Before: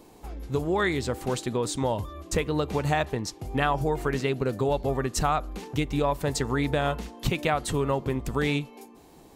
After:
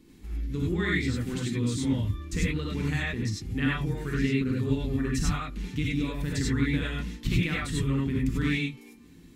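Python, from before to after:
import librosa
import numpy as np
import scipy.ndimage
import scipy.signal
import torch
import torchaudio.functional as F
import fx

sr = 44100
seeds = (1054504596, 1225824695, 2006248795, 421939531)

y = fx.curve_eq(x, sr, hz=(300.0, 670.0, 1900.0, 12000.0), db=(0, -25, -2, -9))
y = fx.rev_gated(y, sr, seeds[0], gate_ms=120, shape='rising', drr_db=-4.5)
y = y * librosa.db_to_amplitude(-2.5)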